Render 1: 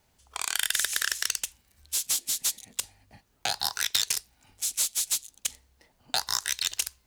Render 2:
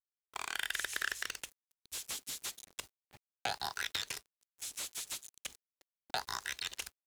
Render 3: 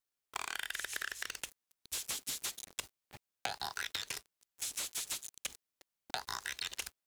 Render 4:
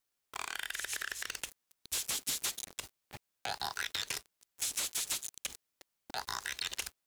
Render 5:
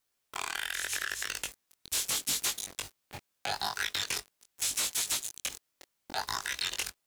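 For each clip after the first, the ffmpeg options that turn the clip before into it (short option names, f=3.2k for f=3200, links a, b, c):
-filter_complex "[0:a]aeval=exprs='val(0)*gte(abs(val(0)),0.00447)':c=same,acrossover=split=3100[a][b];[b]acompressor=threshold=-35dB:ratio=4:attack=1:release=60[c];[a][c]amix=inputs=2:normalize=0,equalizer=f=390:w=1.7:g=3.5,volume=-4.5dB"
-af "acompressor=threshold=-41dB:ratio=6,volume=6dB"
-af "alimiter=level_in=4dB:limit=-24dB:level=0:latency=1:release=48,volume=-4dB,volume=5dB"
-af "flanger=delay=19:depth=3.4:speed=0.79,volume=7.5dB"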